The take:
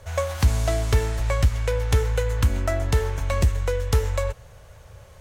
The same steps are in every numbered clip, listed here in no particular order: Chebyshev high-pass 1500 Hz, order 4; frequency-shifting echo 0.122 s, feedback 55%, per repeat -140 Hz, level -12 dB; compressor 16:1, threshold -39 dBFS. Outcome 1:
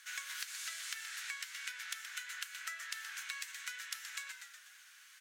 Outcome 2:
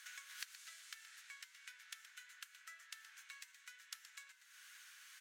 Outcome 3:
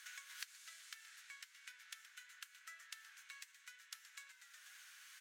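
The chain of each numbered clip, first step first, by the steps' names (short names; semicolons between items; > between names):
frequency-shifting echo > Chebyshev high-pass > compressor; compressor > frequency-shifting echo > Chebyshev high-pass; frequency-shifting echo > compressor > Chebyshev high-pass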